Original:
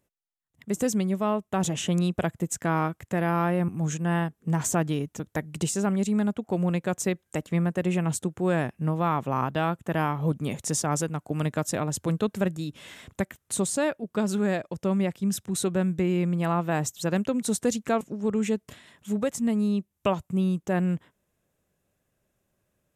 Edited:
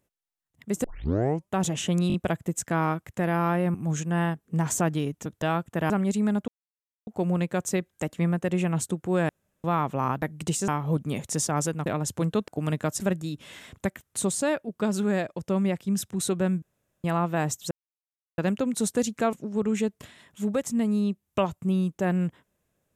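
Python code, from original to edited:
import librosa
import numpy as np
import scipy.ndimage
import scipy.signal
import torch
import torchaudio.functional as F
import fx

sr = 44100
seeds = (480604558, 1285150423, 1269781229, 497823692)

y = fx.edit(x, sr, fx.tape_start(start_s=0.84, length_s=0.67),
    fx.stutter(start_s=2.08, slice_s=0.02, count=4),
    fx.swap(start_s=5.36, length_s=0.46, other_s=9.55, other_length_s=0.48),
    fx.insert_silence(at_s=6.4, length_s=0.59),
    fx.room_tone_fill(start_s=8.62, length_s=0.35),
    fx.move(start_s=11.21, length_s=0.52, to_s=12.35),
    fx.room_tone_fill(start_s=15.97, length_s=0.42),
    fx.insert_silence(at_s=17.06, length_s=0.67), tone=tone)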